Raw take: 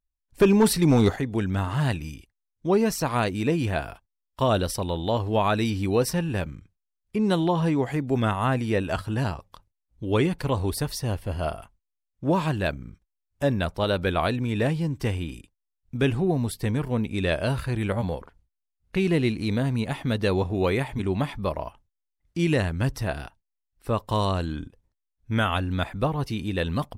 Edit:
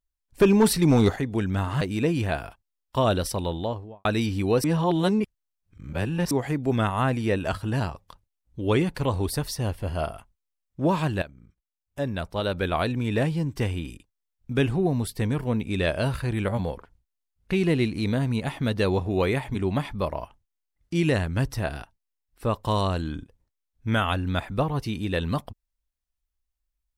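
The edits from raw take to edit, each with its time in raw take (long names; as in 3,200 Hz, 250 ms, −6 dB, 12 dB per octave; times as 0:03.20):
0:01.81–0:03.25: remove
0:04.87–0:05.49: fade out and dull
0:06.08–0:07.75: reverse
0:12.66–0:14.45: fade in linear, from −15.5 dB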